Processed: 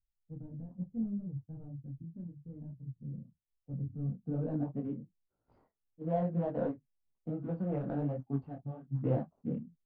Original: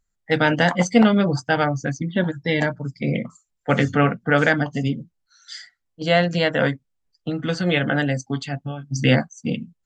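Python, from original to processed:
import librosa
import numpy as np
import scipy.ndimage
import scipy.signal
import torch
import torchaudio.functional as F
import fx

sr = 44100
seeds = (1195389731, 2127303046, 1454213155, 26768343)

y = scipy.ndimage.median_filter(x, 25, mode='constant')
y = fx.filter_sweep_lowpass(y, sr, from_hz=120.0, to_hz=810.0, start_s=3.94, end_s=4.8, q=0.75)
y = fx.detune_double(y, sr, cents=38)
y = y * librosa.db_to_amplitude(-7.5)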